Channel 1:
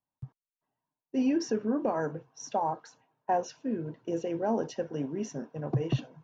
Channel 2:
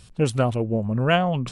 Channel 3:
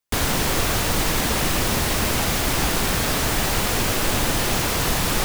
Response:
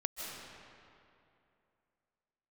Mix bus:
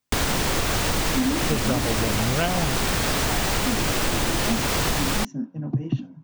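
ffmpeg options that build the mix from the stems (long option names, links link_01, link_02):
-filter_complex "[0:a]lowshelf=frequency=340:width_type=q:width=3:gain=8,bandreject=frequency=90.94:width_type=h:width=4,bandreject=frequency=181.88:width_type=h:width=4,bandreject=frequency=272.82:width_type=h:width=4,bandreject=frequency=363.76:width_type=h:width=4,bandreject=frequency=454.7:width_type=h:width=4,bandreject=frequency=545.64:width_type=h:width=4,bandreject=frequency=636.58:width_type=h:width=4,bandreject=frequency=727.52:width_type=h:width=4,bandreject=frequency=818.46:width_type=h:width=4,bandreject=frequency=909.4:width_type=h:width=4,bandreject=frequency=1000.34:width_type=h:width=4,bandreject=frequency=1091.28:width_type=h:width=4,bandreject=frequency=1182.22:width_type=h:width=4,bandreject=frequency=1273.16:width_type=h:width=4,bandreject=frequency=1364.1:width_type=h:width=4,bandreject=frequency=1455.04:width_type=h:width=4,bandreject=frequency=1545.98:width_type=h:width=4,volume=-2.5dB[link_01];[1:a]adelay=1300,volume=2dB[link_02];[2:a]equalizer=frequency=12000:width=2.4:gain=-8,volume=3dB[link_03];[link_01][link_02][link_03]amix=inputs=3:normalize=0,acompressor=threshold=-19dB:ratio=6"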